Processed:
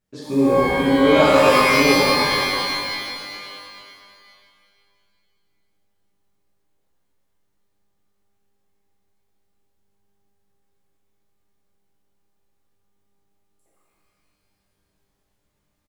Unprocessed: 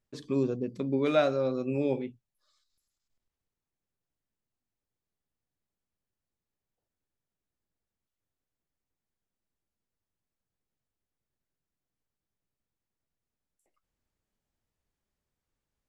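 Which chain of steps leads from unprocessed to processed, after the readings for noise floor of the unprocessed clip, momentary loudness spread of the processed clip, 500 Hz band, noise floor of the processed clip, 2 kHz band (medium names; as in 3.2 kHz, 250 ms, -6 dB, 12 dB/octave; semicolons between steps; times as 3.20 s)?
under -85 dBFS, 17 LU, +12.0 dB, -71 dBFS, +23.5 dB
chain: on a send: frequency-shifting echo 148 ms, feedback 48%, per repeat -100 Hz, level -14.5 dB; on the sum: pitch-shifted reverb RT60 2.3 s, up +12 st, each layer -2 dB, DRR -7 dB; trim +2 dB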